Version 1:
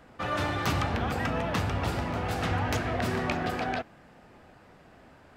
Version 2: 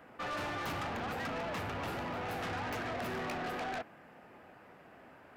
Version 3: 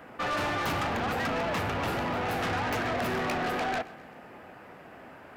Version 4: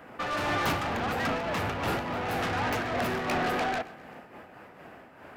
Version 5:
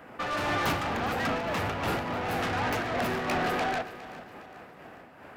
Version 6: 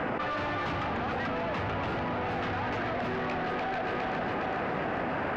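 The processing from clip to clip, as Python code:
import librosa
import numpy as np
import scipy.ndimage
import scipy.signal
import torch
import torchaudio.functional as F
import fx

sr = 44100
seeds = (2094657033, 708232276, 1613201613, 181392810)

y1 = fx.highpass(x, sr, hz=260.0, slope=6)
y1 = fx.band_shelf(y1, sr, hz=5700.0, db=-8.0, octaves=1.7)
y1 = 10.0 ** (-35.0 / 20.0) * np.tanh(y1 / 10.0 ** (-35.0 / 20.0))
y2 = fx.echo_feedback(y1, sr, ms=130, feedback_pct=52, wet_db=-20.0)
y2 = F.gain(torch.from_numpy(y2), 8.0).numpy()
y3 = fx.am_noise(y2, sr, seeds[0], hz=5.7, depth_pct=65)
y3 = F.gain(torch.from_numpy(y3), 3.0).numpy()
y4 = fx.echo_feedback(y3, sr, ms=410, feedback_pct=47, wet_db=-16.5)
y5 = fx.air_absorb(y4, sr, metres=190.0)
y5 = fx.env_flatten(y5, sr, amount_pct=100)
y5 = F.gain(torch.from_numpy(y5), -5.0).numpy()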